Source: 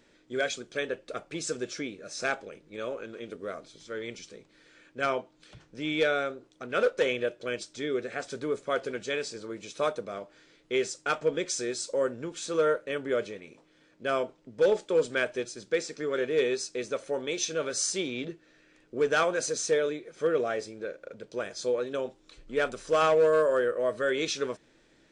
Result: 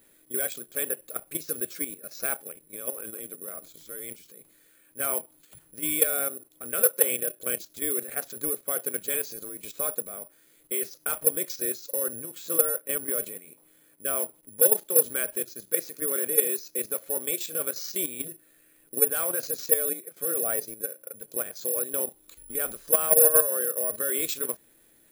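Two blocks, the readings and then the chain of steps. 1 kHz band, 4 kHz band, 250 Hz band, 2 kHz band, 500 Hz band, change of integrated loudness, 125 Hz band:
-6.5 dB, -5.0 dB, -4.5 dB, -5.5 dB, -4.5 dB, +4.5 dB, -4.5 dB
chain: level quantiser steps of 11 dB; careless resampling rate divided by 4×, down filtered, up zero stuff

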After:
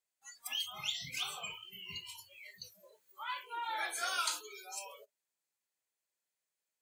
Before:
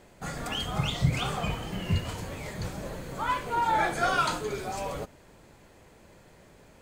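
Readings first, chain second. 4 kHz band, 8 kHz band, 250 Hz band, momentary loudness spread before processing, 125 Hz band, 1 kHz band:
-3.0 dB, -0.5 dB, -28.5 dB, 12 LU, -31.5 dB, -13.0 dB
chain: spectral noise reduction 28 dB; differentiator; gain +4 dB

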